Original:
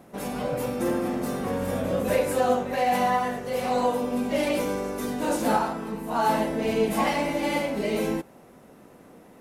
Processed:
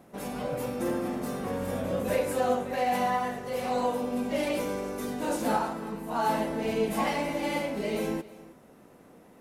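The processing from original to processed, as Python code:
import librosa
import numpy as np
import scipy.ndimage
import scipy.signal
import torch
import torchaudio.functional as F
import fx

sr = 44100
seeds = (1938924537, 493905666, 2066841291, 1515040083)

y = x + 10.0 ** (-19.0 / 20.0) * np.pad(x, (int(316 * sr / 1000.0), 0))[:len(x)]
y = y * 10.0 ** (-4.0 / 20.0)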